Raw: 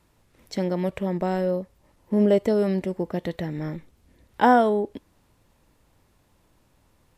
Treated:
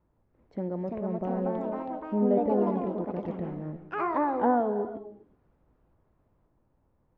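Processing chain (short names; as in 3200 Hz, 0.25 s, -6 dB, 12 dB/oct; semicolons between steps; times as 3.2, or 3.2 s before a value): LPF 1000 Hz 12 dB/oct; echoes that change speed 0.432 s, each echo +3 st, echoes 3; non-linear reverb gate 0.4 s flat, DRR 10.5 dB; gain -7 dB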